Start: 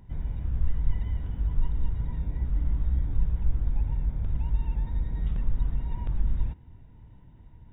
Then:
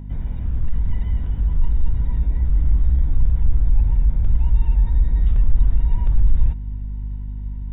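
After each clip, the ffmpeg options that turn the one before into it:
-af "aeval=exprs='val(0)+0.0126*(sin(2*PI*50*n/s)+sin(2*PI*2*50*n/s)/2+sin(2*PI*3*50*n/s)/3+sin(2*PI*4*50*n/s)/4+sin(2*PI*5*50*n/s)/5)':c=same,aeval=exprs='0.266*sin(PI/2*2*val(0)/0.266)':c=same,asubboost=boost=2.5:cutoff=87,volume=-4dB"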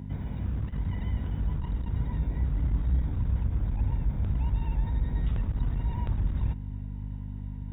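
-af "highpass=90"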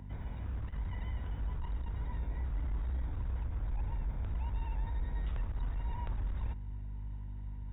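-filter_complex "[0:a]highshelf=f=2.5k:g=-10,acrossover=split=240[a][b];[a]asoftclip=type=tanh:threshold=-27.5dB[c];[c][b]amix=inputs=2:normalize=0,equalizer=f=200:w=0.42:g=-13,volume=1.5dB"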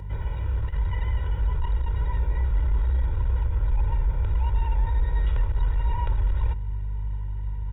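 -af "aecho=1:1:2.1:0.92,volume=7.5dB"

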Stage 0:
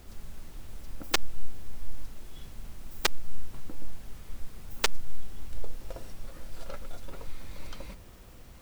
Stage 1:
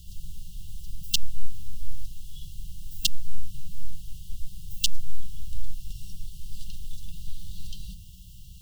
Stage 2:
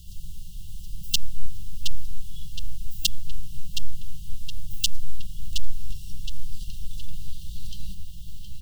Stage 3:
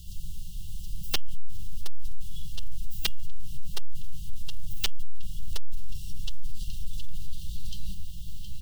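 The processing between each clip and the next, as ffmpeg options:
-af "afftfilt=real='re*(1-between(b*sr/4096,200,2700))':imag='im*(1-between(b*sr/4096,200,2700))':win_size=4096:overlap=0.75,volume=5dB"
-filter_complex "[0:a]asplit=2[a][b];[b]adelay=718,lowpass=f=4.1k:p=1,volume=-5.5dB,asplit=2[c][d];[d]adelay=718,lowpass=f=4.1k:p=1,volume=0.54,asplit=2[e][f];[f]adelay=718,lowpass=f=4.1k:p=1,volume=0.54,asplit=2[g][h];[h]adelay=718,lowpass=f=4.1k:p=1,volume=0.54,asplit=2[i][j];[j]adelay=718,lowpass=f=4.1k:p=1,volume=0.54,asplit=2[k][l];[l]adelay=718,lowpass=f=4.1k:p=1,volume=0.54,asplit=2[m][n];[n]adelay=718,lowpass=f=4.1k:p=1,volume=0.54[o];[a][c][e][g][i][k][m][o]amix=inputs=8:normalize=0,volume=1dB"
-af "bandreject=f=218.4:t=h:w=4,bandreject=f=436.8:t=h:w=4,bandreject=f=655.2:t=h:w=4,bandreject=f=873.6:t=h:w=4,bandreject=f=1.092k:t=h:w=4,bandreject=f=1.3104k:t=h:w=4,bandreject=f=1.5288k:t=h:w=4,bandreject=f=1.7472k:t=h:w=4,bandreject=f=1.9656k:t=h:w=4,bandreject=f=2.184k:t=h:w=4,bandreject=f=2.4024k:t=h:w=4,bandreject=f=2.6208k:t=h:w=4,bandreject=f=2.8392k:t=h:w=4,bandreject=f=3.0576k:t=h:w=4,bandreject=f=3.276k:t=h:w=4,asoftclip=type=tanh:threshold=-15.5dB,volume=1dB"

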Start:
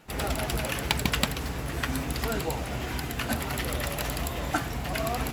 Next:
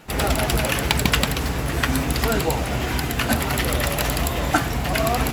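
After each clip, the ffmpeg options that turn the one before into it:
-af "alimiter=level_in=9.5dB:limit=-1dB:release=50:level=0:latency=1,volume=-1dB"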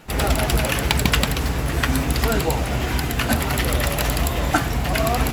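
-af "lowshelf=f=68:g=5.5"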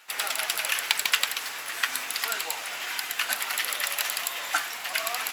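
-af "highpass=1.4k,volume=-1.5dB"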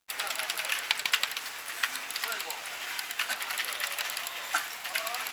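-filter_complex "[0:a]acrossover=split=6100[a][b];[b]alimiter=limit=-18.5dB:level=0:latency=1:release=203[c];[a][c]amix=inputs=2:normalize=0,aeval=exprs='sgn(val(0))*max(abs(val(0))-0.00376,0)':c=same,volume=-2.5dB"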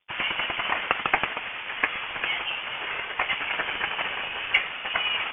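-af "lowpass=f=3.1k:t=q:w=0.5098,lowpass=f=3.1k:t=q:w=0.6013,lowpass=f=3.1k:t=q:w=0.9,lowpass=f=3.1k:t=q:w=2.563,afreqshift=-3600,aexciter=amount=2.3:drive=4.6:freq=2.5k,volume=5dB"

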